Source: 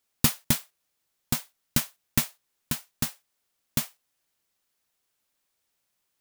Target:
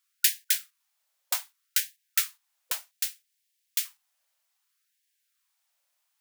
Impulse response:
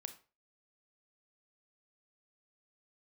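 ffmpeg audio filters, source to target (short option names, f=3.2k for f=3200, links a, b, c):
-filter_complex "[0:a]asettb=1/sr,asplit=3[a][b][c];[a]atrim=end=2.914[d];[b]atrim=start=2.91:end=3.85,asetpts=PTS-STARTPTS,afade=t=in:d=0.004:c=qsin,afade=t=out:st=0.936:d=0.004:c=qsin,asuperstop=centerf=850:order=4:qfactor=0.53[e];[c]atrim=start=3.846[f];[d][e]acrossfade=d=0.004:c1=hsin:c2=qsin[g];[g][f]acrossfade=d=0.004:c1=qsin:c2=hsin,afftfilt=real='re*gte(b*sr/1024,500*pow(1600/500,0.5+0.5*sin(2*PI*0.64*pts/sr)))':imag='im*gte(b*sr/1024,500*pow(1600/500,0.5+0.5*sin(2*PI*0.64*pts/sr)))':win_size=1024:overlap=0.75,volume=1dB"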